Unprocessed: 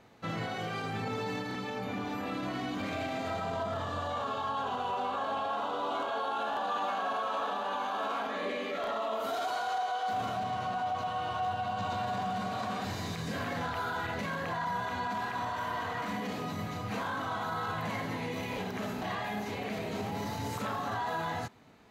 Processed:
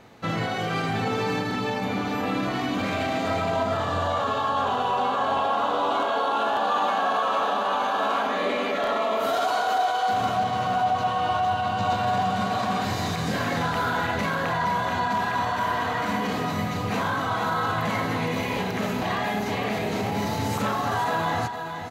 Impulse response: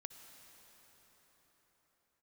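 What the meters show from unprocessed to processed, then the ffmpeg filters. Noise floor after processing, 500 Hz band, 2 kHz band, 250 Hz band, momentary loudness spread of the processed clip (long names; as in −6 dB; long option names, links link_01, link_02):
−28 dBFS, +9.5 dB, +9.0 dB, +9.0 dB, 4 LU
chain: -af "aecho=1:1:465:0.422,volume=8.5dB"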